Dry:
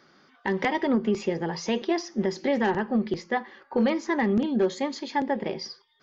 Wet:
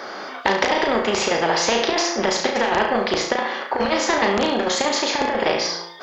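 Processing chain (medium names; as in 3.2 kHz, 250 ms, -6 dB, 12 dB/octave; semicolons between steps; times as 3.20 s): peaking EQ 650 Hz +15 dB 1.6 oct; saturation -4 dBFS, distortion -24 dB; high-pass 62 Hz; peaking EQ 140 Hz -14.5 dB 1.8 oct; de-hum 171.2 Hz, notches 28; compressor with a negative ratio -20 dBFS, ratio -0.5; flutter echo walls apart 6 m, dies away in 0.38 s; spectrum-flattening compressor 2:1; trim +5 dB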